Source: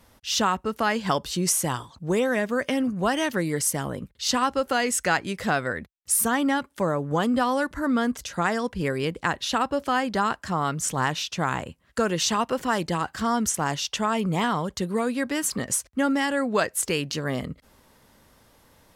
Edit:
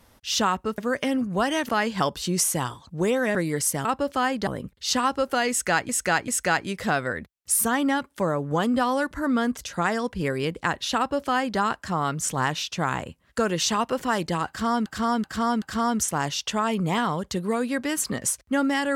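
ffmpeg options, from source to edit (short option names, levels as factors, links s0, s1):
-filter_complex "[0:a]asplit=11[s0][s1][s2][s3][s4][s5][s6][s7][s8][s9][s10];[s0]atrim=end=0.782[s11];[s1]atrim=start=2.438:end=3.352[s12];[s2]atrim=start=0.778:end=2.442[s13];[s3]atrim=start=3.348:end=3.852[s14];[s4]atrim=start=9.568:end=10.192[s15];[s5]atrim=start=3.848:end=5.272[s16];[s6]atrim=start=4.878:end=5.272[s17];[s7]atrim=start=4.878:end=13.462[s18];[s8]atrim=start=13.078:end=13.462[s19];[s9]atrim=start=13.078:end=13.462[s20];[s10]atrim=start=13.078[s21];[s11][s12]acrossfade=d=0.004:c1=hsin:c2=hsin[s22];[s22][s13]acrossfade=d=0.004:c1=hsin:c2=hsin[s23];[s23][s14]acrossfade=d=0.004:c1=hsin:c2=hsin[s24];[s24][s15]acrossfade=d=0.004:c1=hsin:c2=hsin[s25];[s25][s16]acrossfade=d=0.004:c1=hsin:c2=hsin[s26];[s26][s17]acrossfade=d=0.004:c1=hsin:c2=hsin[s27];[s27][s18]acrossfade=d=0.004:c1=hsin:c2=hsin[s28];[s28][s19]acrossfade=d=0.004:c1=hsin:c2=hsin[s29];[s29][s20]acrossfade=d=0.004:c1=hsin:c2=hsin[s30];[s30][s21]acrossfade=d=0.004:c1=hsin:c2=hsin"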